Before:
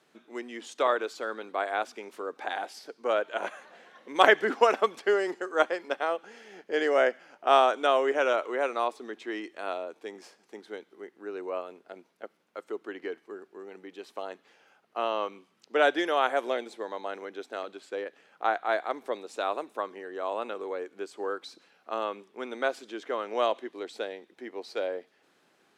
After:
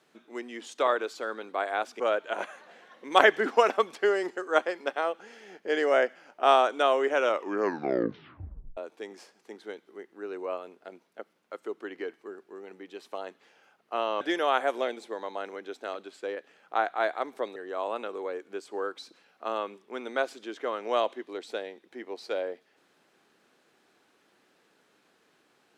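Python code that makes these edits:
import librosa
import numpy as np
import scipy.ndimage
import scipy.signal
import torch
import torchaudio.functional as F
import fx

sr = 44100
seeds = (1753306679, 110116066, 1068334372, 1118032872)

y = fx.edit(x, sr, fx.cut(start_s=2.0, length_s=1.04),
    fx.tape_stop(start_s=8.28, length_s=1.53),
    fx.cut(start_s=15.25, length_s=0.65),
    fx.cut(start_s=19.25, length_s=0.77), tone=tone)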